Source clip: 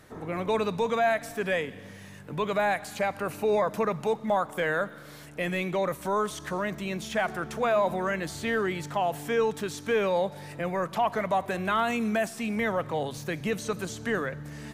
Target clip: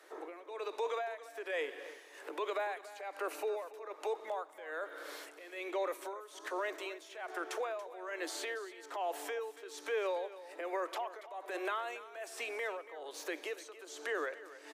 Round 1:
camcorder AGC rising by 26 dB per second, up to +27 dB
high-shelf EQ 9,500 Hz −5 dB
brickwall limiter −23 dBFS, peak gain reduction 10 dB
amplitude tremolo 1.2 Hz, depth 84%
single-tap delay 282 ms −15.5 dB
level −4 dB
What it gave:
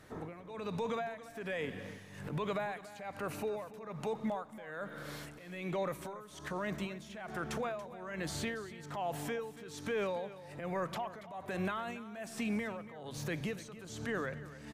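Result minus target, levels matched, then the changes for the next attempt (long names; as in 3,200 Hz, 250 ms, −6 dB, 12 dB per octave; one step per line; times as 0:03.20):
250 Hz band +9.5 dB
add after camcorder AGC: Butterworth high-pass 320 Hz 72 dB per octave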